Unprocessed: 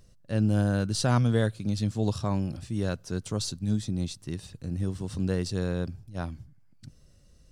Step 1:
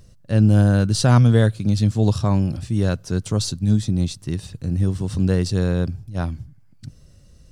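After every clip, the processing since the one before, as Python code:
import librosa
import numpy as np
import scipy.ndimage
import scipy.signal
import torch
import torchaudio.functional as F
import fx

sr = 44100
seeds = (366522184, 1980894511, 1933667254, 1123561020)

y = fx.peak_eq(x, sr, hz=100.0, db=4.5, octaves=1.9)
y = y * 10.0 ** (6.5 / 20.0)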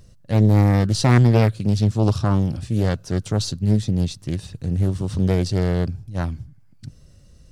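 y = fx.dynamic_eq(x, sr, hz=8900.0, q=1.4, threshold_db=-45.0, ratio=4.0, max_db=-4)
y = fx.doppler_dist(y, sr, depth_ms=0.67)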